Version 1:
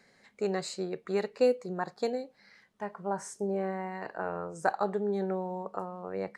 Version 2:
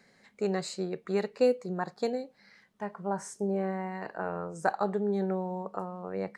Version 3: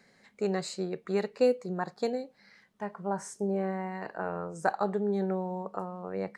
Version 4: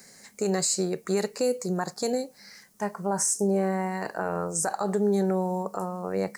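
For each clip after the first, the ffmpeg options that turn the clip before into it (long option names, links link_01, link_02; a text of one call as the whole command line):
ffmpeg -i in.wav -af "equalizer=frequency=190:width_type=o:width=0.84:gain=3.5" out.wav
ffmpeg -i in.wav -af anull out.wav
ffmpeg -i in.wav -af "aexciter=amount=3.7:drive=9.3:freq=5000,alimiter=limit=-22.5dB:level=0:latency=1:release=51,volume=6.5dB" out.wav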